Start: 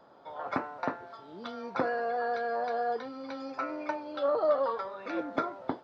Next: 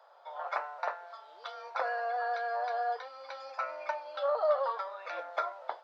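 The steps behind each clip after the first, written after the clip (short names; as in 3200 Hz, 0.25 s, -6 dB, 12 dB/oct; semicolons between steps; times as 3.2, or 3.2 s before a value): steep high-pass 560 Hz 36 dB/oct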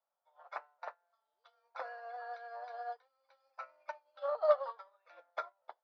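upward expander 2.5:1, over -46 dBFS; gain +2 dB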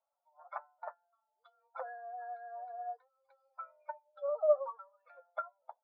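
spectral contrast raised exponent 1.9; gain +1 dB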